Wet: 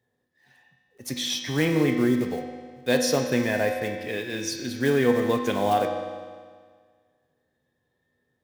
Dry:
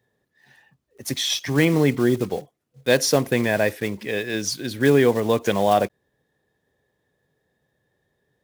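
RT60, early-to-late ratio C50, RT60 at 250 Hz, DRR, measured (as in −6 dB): 1.7 s, 4.5 dB, 1.7 s, 2.5 dB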